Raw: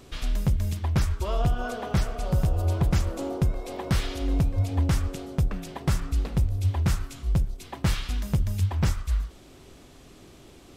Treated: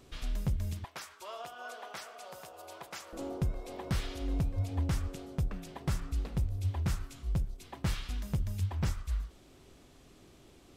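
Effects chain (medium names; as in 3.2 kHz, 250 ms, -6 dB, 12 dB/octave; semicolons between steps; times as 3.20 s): 0.84–3.13 s: high-pass 720 Hz 12 dB/octave; trim -8 dB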